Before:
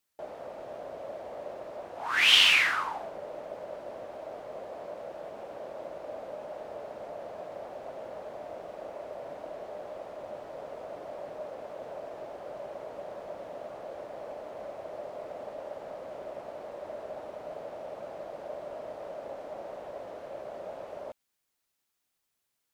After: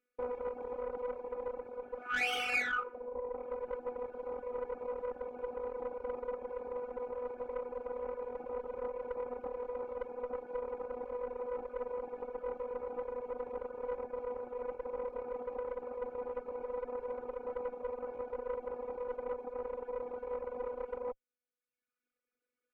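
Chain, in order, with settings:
phases set to zero 247 Hz
drawn EQ curve 200 Hz 0 dB, 340 Hz +10 dB, 530 Hz +9 dB, 780 Hz −26 dB, 1,500 Hz 0 dB, 4,300 Hz −17 dB
speech leveller within 4 dB 2 s
tube saturation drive 33 dB, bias 0.7
hollow resonant body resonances 780/1,300/2,300 Hz, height 17 dB, ringing for 25 ms
reverb reduction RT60 1 s
level +1 dB

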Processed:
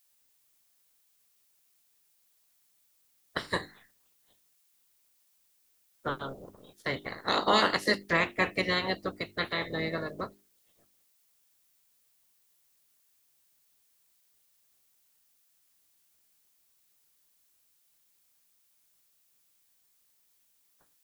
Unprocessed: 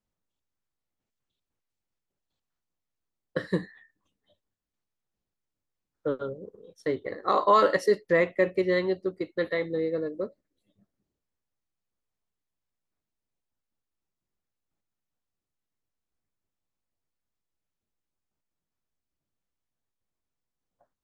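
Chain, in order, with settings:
ceiling on every frequency bin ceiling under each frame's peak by 25 dB
background noise blue −66 dBFS
mains-hum notches 50/100/150/200/250/300/350/400 Hz
level −3.5 dB

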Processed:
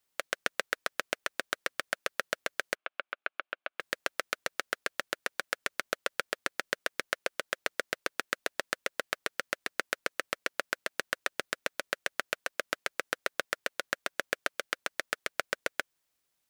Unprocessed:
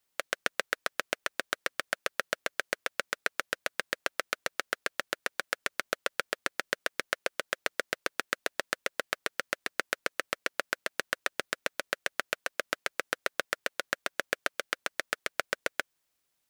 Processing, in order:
0:02.75–0:03.80: loudspeaker in its box 410–2,800 Hz, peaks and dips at 470 Hz −10 dB, 930 Hz −5 dB, 1,900 Hz −9 dB
level −1 dB

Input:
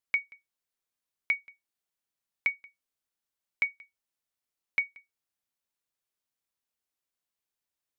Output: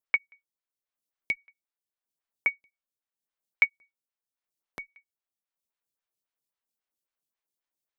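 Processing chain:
transient designer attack +7 dB, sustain −5 dB
phaser with staggered stages 3.7 Hz
level +1 dB

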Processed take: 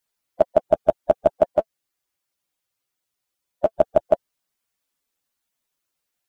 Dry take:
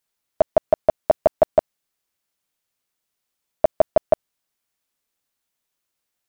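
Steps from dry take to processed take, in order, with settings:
spectral magnitudes quantised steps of 15 dB
0:01.52–0:03.74: notch comb filter 220 Hz

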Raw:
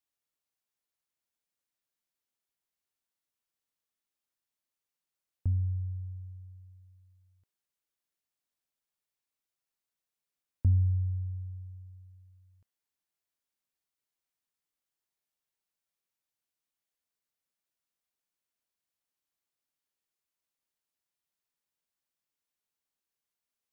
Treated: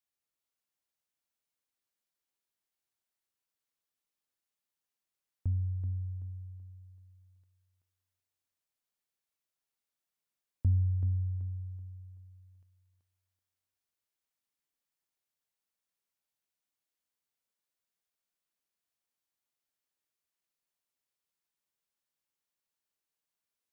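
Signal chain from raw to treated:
feedback echo with a high-pass in the loop 381 ms, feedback 38%, high-pass 190 Hz, level −4 dB
level −2.5 dB

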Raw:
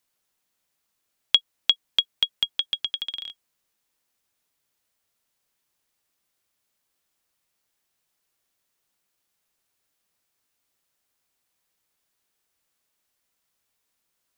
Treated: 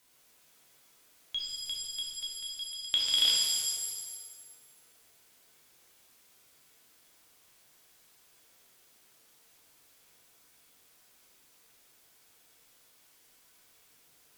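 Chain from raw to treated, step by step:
harmonic generator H 2 −21 dB, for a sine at −3 dBFS
volume swells 246 ms
reverb with rising layers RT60 1.4 s, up +7 semitones, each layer −2 dB, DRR −3 dB
level +8 dB

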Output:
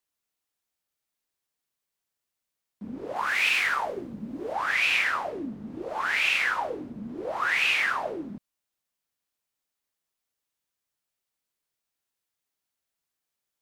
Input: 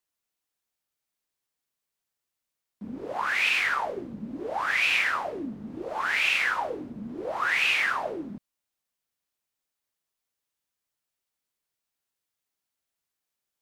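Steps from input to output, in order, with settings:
0:03.16–0:04.53: high-shelf EQ 7,400 Hz +5.5 dB

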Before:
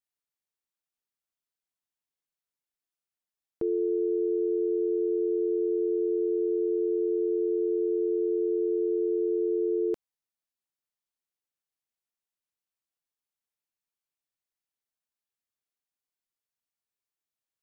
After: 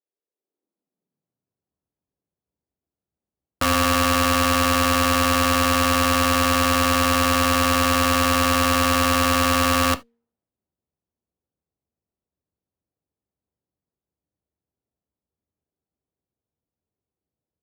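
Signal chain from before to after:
brickwall limiter −28.5 dBFS, peak gain reduction 7.5 dB
automatic gain control gain up to 9.5 dB
low-pass that shuts in the quiet parts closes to 460 Hz, open at −24 dBFS
wrap-around overflow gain 21.5 dB
reverb whose tail is shaped and stops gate 100 ms falling, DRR 11.5 dB
high-pass filter sweep 420 Hz → 70 Hz, 0:00.33–0:01.85
hum removal 233.4 Hz, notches 2
windowed peak hold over 5 samples
level +6.5 dB

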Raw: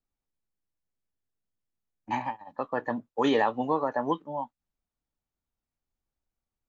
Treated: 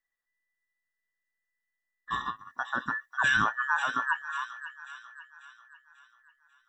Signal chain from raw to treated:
frequency inversion band by band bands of 2,000 Hz
0:02.19–0:04.26: high-shelf EQ 5,600 Hz +11.5 dB
delay with a high-pass on its return 542 ms, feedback 46%, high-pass 2,100 Hz, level −6 dB
level −2 dB

